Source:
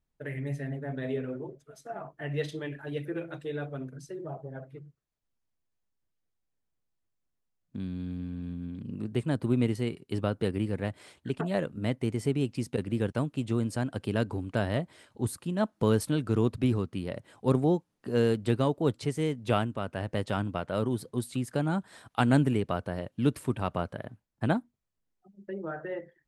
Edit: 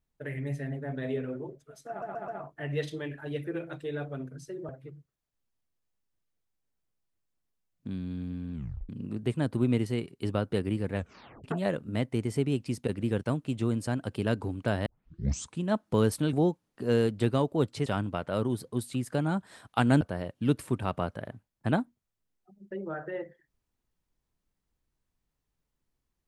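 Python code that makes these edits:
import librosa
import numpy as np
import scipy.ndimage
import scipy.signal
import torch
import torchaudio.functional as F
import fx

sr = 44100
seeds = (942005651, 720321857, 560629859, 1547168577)

y = fx.edit(x, sr, fx.stutter(start_s=1.89, slice_s=0.13, count=4),
    fx.cut(start_s=4.3, length_s=0.28),
    fx.tape_stop(start_s=8.43, length_s=0.35),
    fx.tape_stop(start_s=10.84, length_s=0.49),
    fx.tape_start(start_s=14.75, length_s=0.74),
    fx.cut(start_s=16.22, length_s=1.37),
    fx.cut(start_s=19.12, length_s=1.15),
    fx.cut(start_s=22.42, length_s=0.36), tone=tone)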